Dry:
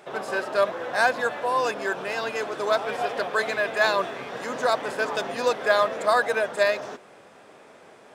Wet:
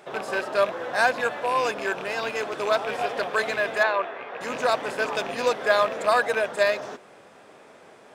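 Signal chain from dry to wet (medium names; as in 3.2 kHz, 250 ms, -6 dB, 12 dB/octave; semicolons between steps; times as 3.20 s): rattle on loud lows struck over -40 dBFS, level -24 dBFS; 3.83–4.41 s: three-band isolator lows -15 dB, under 370 Hz, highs -22 dB, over 2.9 kHz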